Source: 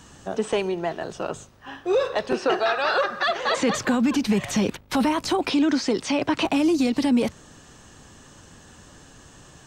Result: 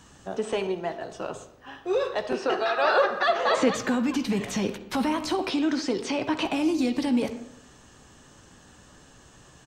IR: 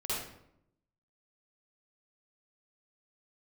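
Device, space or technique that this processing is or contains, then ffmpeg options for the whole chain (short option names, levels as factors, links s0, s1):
filtered reverb send: -filter_complex "[0:a]asettb=1/sr,asplit=3[s0][s1][s2];[s0]atrim=end=0.674[s3];[s1]atrim=start=0.67:end=1.12,asetpts=PTS-STARTPTS,afade=t=in:d=0.004:c=qsin,afade=t=out:st=0.446:d=0.004:c=qsin,agate=range=0.0224:threshold=0.0447:ratio=3:detection=peak[s4];[s2]atrim=start=1.116[s5];[s3][s4]acrossfade=d=0.004:c1=hsin:c2=qsin[s6];[s6][s5]acrossfade=d=0.004:c1=qsin:c2=hsin,asplit=2[s7][s8];[s8]highpass=190,lowpass=5800[s9];[1:a]atrim=start_sample=2205[s10];[s9][s10]afir=irnorm=-1:irlink=0,volume=0.188[s11];[s7][s11]amix=inputs=2:normalize=0,asettb=1/sr,asplit=3[s12][s13][s14];[s12]atrim=end=2.774[s15];[s13]atrim=start=2.77:end=3.69,asetpts=PTS-STARTPTS,afade=t=in:d=0.004:c=qsin,afade=t=out:st=0.916:d=0.004:c=qsin,equalizer=f=550:t=o:w=2.9:g=6[s16];[s14]atrim=start=3.686[s17];[s15][s16]acrossfade=d=0.004:c1=hsin:c2=qsin[s18];[s18][s17]acrossfade=d=0.004:c1=qsin:c2=hsin,asplit=2[s19][s20];[s20]adelay=16,volume=0.251[s21];[s19][s21]amix=inputs=2:normalize=0,volume=0.562"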